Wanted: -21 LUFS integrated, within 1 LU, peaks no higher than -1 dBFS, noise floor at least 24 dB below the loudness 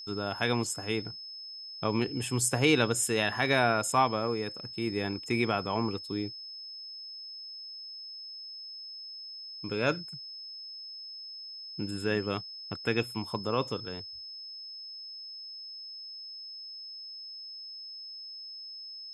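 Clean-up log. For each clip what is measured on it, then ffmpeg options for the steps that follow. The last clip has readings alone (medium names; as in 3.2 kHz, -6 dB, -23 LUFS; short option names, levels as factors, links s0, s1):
steady tone 5.2 kHz; tone level -41 dBFS; loudness -33.0 LUFS; peak level -11.5 dBFS; loudness target -21.0 LUFS
-> -af "bandreject=f=5200:w=30"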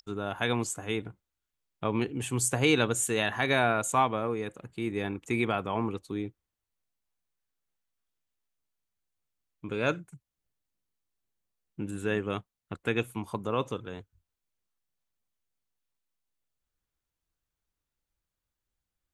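steady tone not found; loudness -30.0 LUFS; peak level -11.0 dBFS; loudness target -21.0 LUFS
-> -af "volume=2.82"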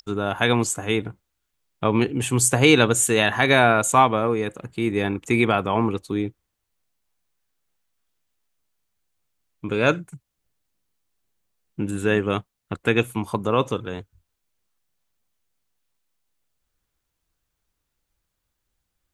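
loudness -21.0 LUFS; peak level -2.0 dBFS; noise floor -79 dBFS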